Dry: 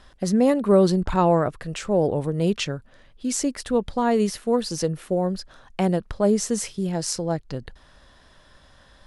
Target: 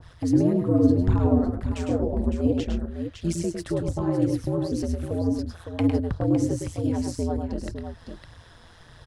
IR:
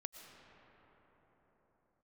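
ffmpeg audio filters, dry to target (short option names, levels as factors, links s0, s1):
-filter_complex "[0:a]acrossover=split=320[s0][s1];[s1]acompressor=threshold=0.0178:ratio=6[s2];[s0][s2]amix=inputs=2:normalize=0,aeval=exprs='val(0)*sin(2*PI*85*n/s)':c=same,aphaser=in_gain=1:out_gain=1:delay=4.3:decay=0.44:speed=1.8:type=triangular,aecho=1:1:105|128|558:0.531|0.168|0.376,adynamicequalizer=threshold=0.00398:dfrequency=1700:dqfactor=0.7:tfrequency=1700:tqfactor=0.7:attack=5:release=100:ratio=0.375:range=3:mode=cutabove:tftype=highshelf,volume=1.41"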